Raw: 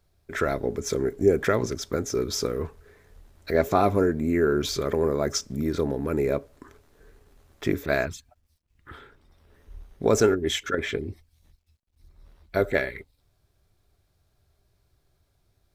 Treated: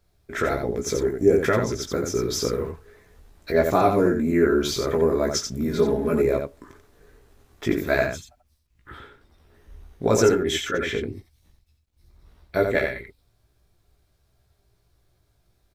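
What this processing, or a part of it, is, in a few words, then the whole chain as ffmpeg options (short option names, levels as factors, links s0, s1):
slapback doubling: -filter_complex "[0:a]asplit=3[s0][s1][s2];[s1]adelay=17,volume=0.668[s3];[s2]adelay=87,volume=0.562[s4];[s0][s3][s4]amix=inputs=3:normalize=0,asettb=1/sr,asplit=3[s5][s6][s7];[s5]atrim=end=5.714[s8];[s6]atrim=start=5.71:end=6.22,asetpts=PTS-STARTPTS,afade=t=in:d=0.004:c=qsin,afade=t=out:st=0.506:d=0.004:c=qsin,aecho=1:1:4.8:0.78,atrim=end_sample=22491[s9];[s7]atrim=start=6.216[s10];[s8][s9]acrossfade=d=0.004:c1=hsin:c2=qsin[s11];[s11][s10]acrossfade=d=0.004:c1=qsin:c2=hsin"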